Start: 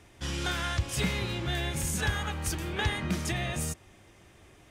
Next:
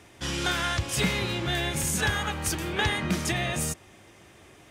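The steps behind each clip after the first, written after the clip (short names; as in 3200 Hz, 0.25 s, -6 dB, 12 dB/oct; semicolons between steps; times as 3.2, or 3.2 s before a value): HPF 130 Hz 6 dB/oct; gain +5 dB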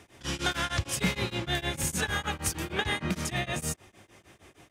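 beating tremolo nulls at 6.5 Hz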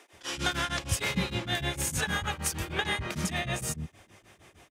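bands offset in time highs, lows 0.13 s, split 310 Hz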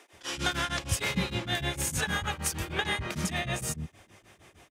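nothing audible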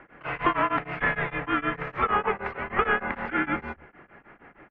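mistuned SSB -390 Hz 530–2500 Hz; gain +9 dB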